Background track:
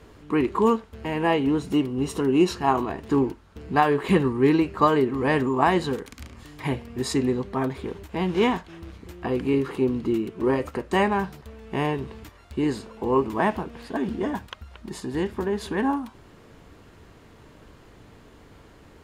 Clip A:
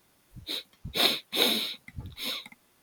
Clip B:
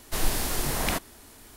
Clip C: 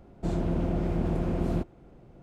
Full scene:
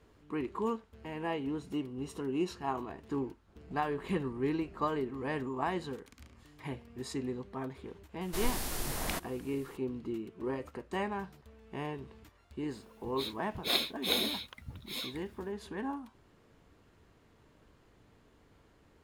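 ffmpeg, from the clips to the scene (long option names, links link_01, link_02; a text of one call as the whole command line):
ffmpeg -i bed.wav -i cue0.wav -i cue1.wav -i cue2.wav -filter_complex "[0:a]volume=-13.5dB[link_01];[3:a]acompressor=threshold=-41dB:ratio=6:attack=3.2:release=140:knee=1:detection=peak,atrim=end=2.22,asetpts=PTS-STARTPTS,volume=-11.5dB,afade=type=in:duration=0.004:curve=hsin,afade=type=out:start_time=2.216:duration=0.004:curve=hsin,adelay=3480[link_02];[2:a]atrim=end=1.56,asetpts=PTS-STARTPTS,volume=-8dB,afade=type=in:duration=0.004:curve=hsin,afade=type=out:start_time=1.556:duration=0.004:curve=hsin,adelay=8210[link_03];[1:a]atrim=end=2.82,asetpts=PTS-STARTPTS,volume=-6dB,afade=type=in:duration=0.004:curve=hsin,afade=type=out:start_time=2.816:duration=0.004:curve=hsin,adelay=12700[link_04];[link_01][link_02][link_03][link_04]amix=inputs=4:normalize=0" out.wav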